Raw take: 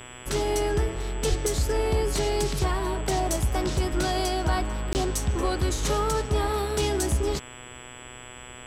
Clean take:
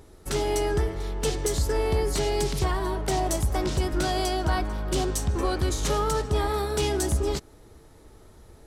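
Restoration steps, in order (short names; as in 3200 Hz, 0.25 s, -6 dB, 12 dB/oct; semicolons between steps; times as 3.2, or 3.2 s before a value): de-hum 123.8 Hz, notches 28; notch 7800 Hz, Q 30; 1.29–1.41 HPF 140 Hz 24 dB/oct; interpolate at 4.93, 19 ms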